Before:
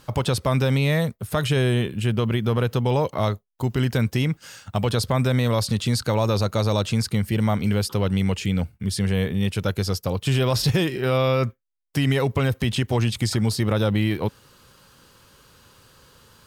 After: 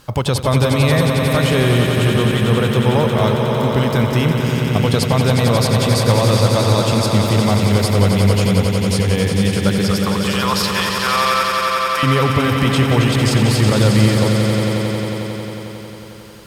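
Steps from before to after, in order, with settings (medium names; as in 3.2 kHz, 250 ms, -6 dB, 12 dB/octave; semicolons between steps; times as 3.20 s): 9.91–12.03 s: resonant high-pass 1.1 kHz, resonance Q 2.6; echo with a slow build-up 90 ms, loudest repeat 5, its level -7.5 dB; trim +4.5 dB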